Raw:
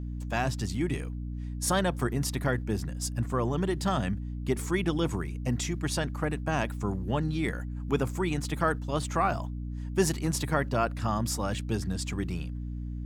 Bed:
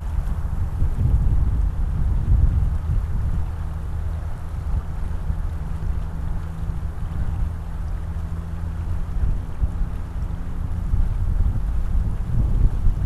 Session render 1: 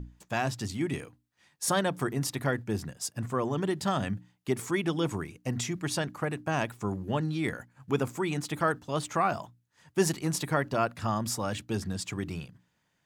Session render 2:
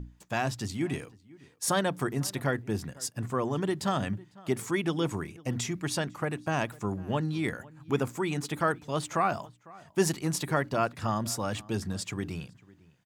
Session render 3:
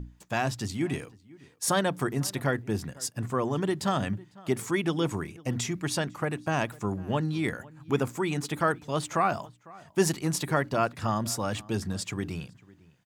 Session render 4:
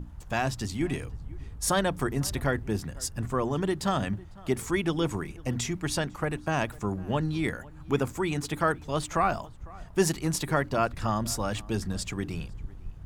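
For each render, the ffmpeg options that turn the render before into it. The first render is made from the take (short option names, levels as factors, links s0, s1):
-af "bandreject=f=60:t=h:w=6,bandreject=f=120:t=h:w=6,bandreject=f=180:t=h:w=6,bandreject=f=240:t=h:w=6,bandreject=f=300:t=h:w=6"
-filter_complex "[0:a]asplit=2[s0][s1];[s1]adelay=501.5,volume=0.0794,highshelf=f=4000:g=-11.3[s2];[s0][s2]amix=inputs=2:normalize=0"
-af "volume=1.19"
-filter_complex "[1:a]volume=0.0891[s0];[0:a][s0]amix=inputs=2:normalize=0"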